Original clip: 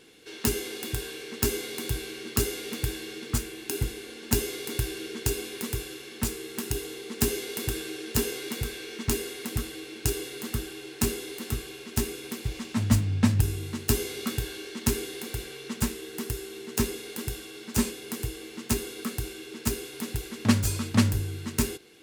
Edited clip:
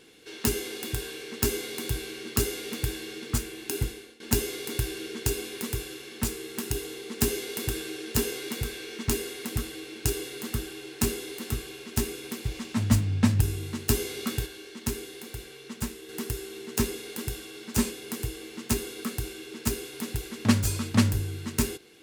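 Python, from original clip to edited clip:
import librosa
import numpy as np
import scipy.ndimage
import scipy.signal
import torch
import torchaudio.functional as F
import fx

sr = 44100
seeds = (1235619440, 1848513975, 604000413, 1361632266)

y = fx.edit(x, sr, fx.fade_out_to(start_s=3.83, length_s=0.37, floor_db=-18.0),
    fx.clip_gain(start_s=14.46, length_s=1.63, db=-5.0), tone=tone)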